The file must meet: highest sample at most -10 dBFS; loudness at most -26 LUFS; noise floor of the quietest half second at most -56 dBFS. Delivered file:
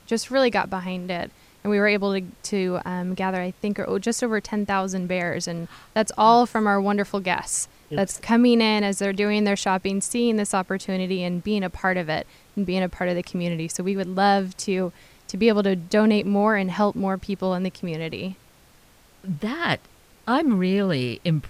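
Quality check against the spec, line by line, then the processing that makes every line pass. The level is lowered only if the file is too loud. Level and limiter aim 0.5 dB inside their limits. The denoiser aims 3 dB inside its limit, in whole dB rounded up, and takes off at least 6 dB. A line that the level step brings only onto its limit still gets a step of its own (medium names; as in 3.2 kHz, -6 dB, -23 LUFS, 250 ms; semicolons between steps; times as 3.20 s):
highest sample -5.0 dBFS: fail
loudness -23.5 LUFS: fail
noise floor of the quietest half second -54 dBFS: fail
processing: trim -3 dB; peak limiter -10.5 dBFS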